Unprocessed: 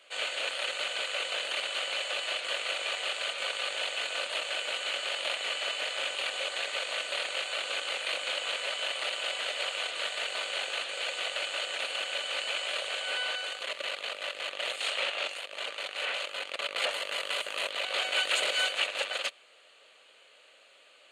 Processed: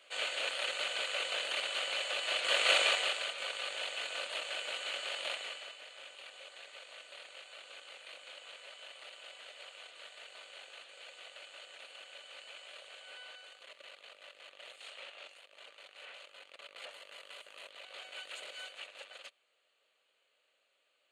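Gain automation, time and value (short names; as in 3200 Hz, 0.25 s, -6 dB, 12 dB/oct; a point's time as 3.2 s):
2.22 s -3 dB
2.76 s +7 dB
3.32 s -6 dB
5.34 s -6 dB
5.78 s -18 dB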